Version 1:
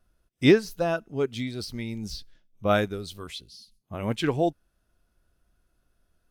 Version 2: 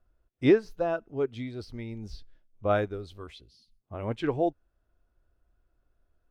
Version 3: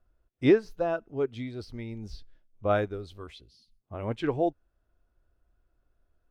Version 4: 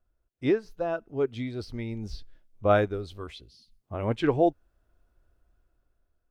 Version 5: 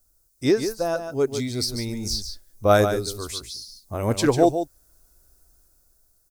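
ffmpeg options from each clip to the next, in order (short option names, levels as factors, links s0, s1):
-af "lowpass=f=1000:p=1,equalizer=f=180:w=1.6:g=-9.5"
-af anull
-af "dynaudnorm=f=280:g=7:m=2.99,volume=0.562"
-af "aexciter=amount=9.8:drive=7:freq=4500,aecho=1:1:145:0.376,volume=1.68"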